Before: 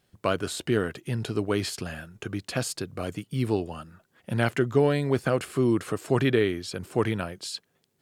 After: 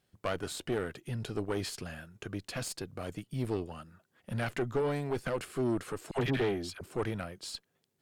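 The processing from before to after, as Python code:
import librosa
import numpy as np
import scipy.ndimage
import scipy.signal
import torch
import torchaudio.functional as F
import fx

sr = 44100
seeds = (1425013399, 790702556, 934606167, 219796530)

y = fx.dispersion(x, sr, late='lows', ms=77.0, hz=780.0, at=(6.11, 6.81))
y = fx.tube_stage(y, sr, drive_db=21.0, bias=0.65)
y = F.gain(torch.from_numpy(y), -3.0).numpy()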